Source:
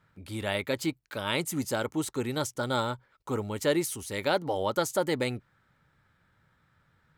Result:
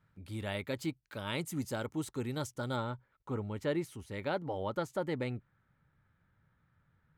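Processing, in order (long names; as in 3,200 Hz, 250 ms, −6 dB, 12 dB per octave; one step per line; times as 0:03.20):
bass and treble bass +6 dB, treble −2 dB, from 0:02.75 treble −13 dB
level −8 dB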